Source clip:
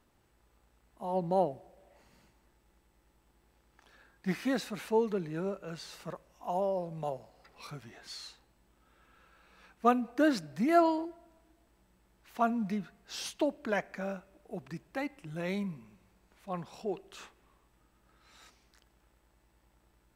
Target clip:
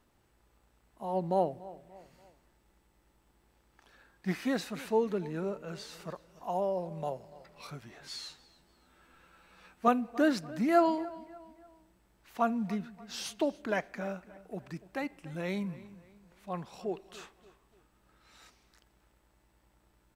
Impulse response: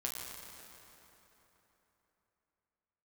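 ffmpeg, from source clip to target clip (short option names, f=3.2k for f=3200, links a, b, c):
-filter_complex "[0:a]asettb=1/sr,asplit=3[a][b][c];[a]atrim=end=8.014[d];[b]atrim=start=8.01:end=9.88,asetpts=PTS-STARTPTS,afade=t=in:d=0.004:c=qsin,afade=t=out:st=1.866:d=0.004:c=qsin,asplit=2[e][f];[f]adelay=12,volume=-2dB[g];[e][g]amix=inputs=2:normalize=0,atrim=end_sample=82467[h];[c]atrim=start=9.876[i];[d][h]acrossfade=d=0.004:c1=hsin:c2=qsin[j];[j][i]acrossfade=d=0.004:c1=qsin:c2=hsin,asplit=2[k][l];[l]adelay=290,lowpass=f=4.5k:p=1,volume=-18.5dB,asplit=2[m][n];[n]adelay=290,lowpass=f=4.5k:p=1,volume=0.42,asplit=2[o][p];[p]adelay=290,lowpass=f=4.5k:p=1,volume=0.42[q];[k][m][o][q]amix=inputs=4:normalize=0"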